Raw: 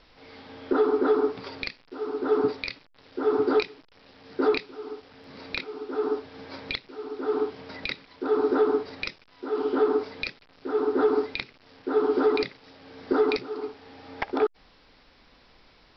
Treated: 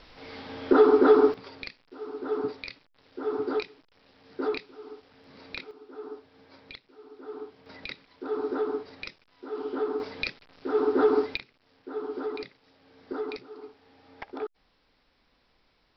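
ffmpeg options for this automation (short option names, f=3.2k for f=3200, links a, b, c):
-af "asetnsamples=n=441:p=0,asendcmd='1.34 volume volume -6.5dB;5.71 volume volume -13.5dB;7.66 volume volume -7dB;10 volume volume 0.5dB;11.37 volume volume -11dB',volume=4.5dB"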